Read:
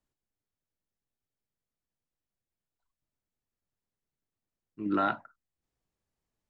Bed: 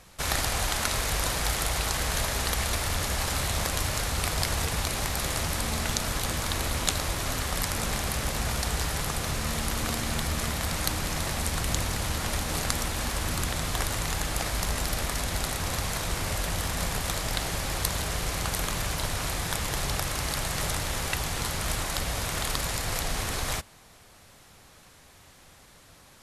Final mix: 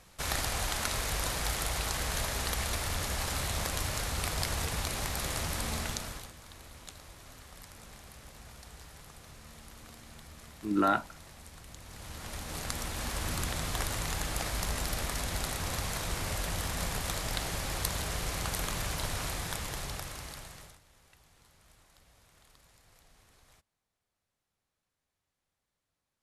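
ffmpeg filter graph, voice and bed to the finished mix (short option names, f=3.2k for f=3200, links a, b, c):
-filter_complex "[0:a]adelay=5850,volume=1.5dB[a];[1:a]volume=12dB,afade=t=out:st=5.76:d=0.56:silence=0.149624,afade=t=in:st=11.81:d=1.47:silence=0.141254,afade=t=out:st=19.18:d=1.62:silence=0.0398107[b];[a][b]amix=inputs=2:normalize=0"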